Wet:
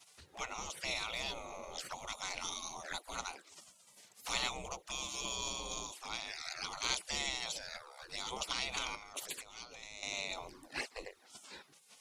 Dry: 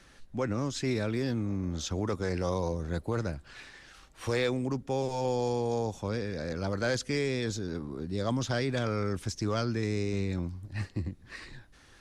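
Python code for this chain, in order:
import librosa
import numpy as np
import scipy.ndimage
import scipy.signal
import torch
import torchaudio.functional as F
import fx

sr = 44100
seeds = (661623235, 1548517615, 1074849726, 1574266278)

y = fx.env_flanger(x, sr, rest_ms=3.6, full_db=-28.5)
y = fx.over_compress(y, sr, threshold_db=-37.0, ratio=-0.5, at=(8.95, 10.03))
y = fx.spec_gate(y, sr, threshold_db=-25, keep='weak')
y = y * 10.0 ** (10.5 / 20.0)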